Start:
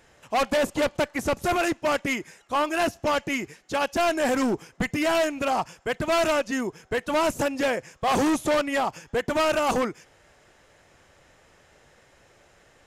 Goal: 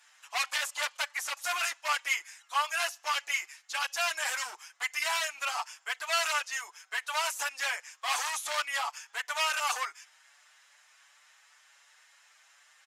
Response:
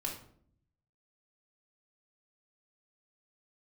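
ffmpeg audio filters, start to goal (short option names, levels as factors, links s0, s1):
-filter_complex "[0:a]highpass=f=990:w=0.5412,highpass=f=990:w=1.3066,equalizer=f=7100:t=o:w=2.7:g=5,asplit=2[s0][s1];[s1]adelay=6.5,afreqshift=2.7[s2];[s0][s2]amix=inputs=2:normalize=1"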